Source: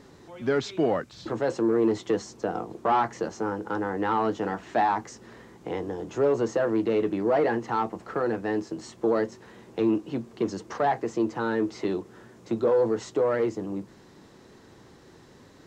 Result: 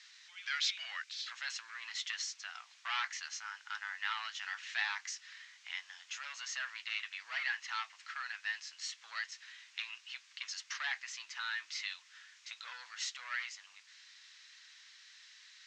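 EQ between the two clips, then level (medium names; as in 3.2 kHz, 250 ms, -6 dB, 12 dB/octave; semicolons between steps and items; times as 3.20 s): inverse Chebyshev high-pass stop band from 440 Hz, stop band 70 dB; low-pass 6.4 kHz 24 dB/octave; +6.0 dB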